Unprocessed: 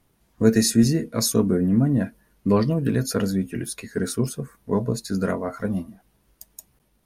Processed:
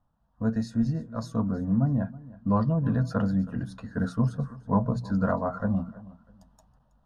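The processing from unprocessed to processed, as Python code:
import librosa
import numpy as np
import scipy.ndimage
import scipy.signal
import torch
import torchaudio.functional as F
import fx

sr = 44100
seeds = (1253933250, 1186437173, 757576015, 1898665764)

y = scipy.signal.sosfilt(scipy.signal.butter(2, 1900.0, 'lowpass', fs=sr, output='sos'), x)
y = fx.hum_notches(y, sr, base_hz=60, count=3)
y = fx.rider(y, sr, range_db=10, speed_s=2.0)
y = fx.fixed_phaser(y, sr, hz=920.0, stages=4)
y = fx.echo_feedback(y, sr, ms=323, feedback_pct=28, wet_db=-19.5)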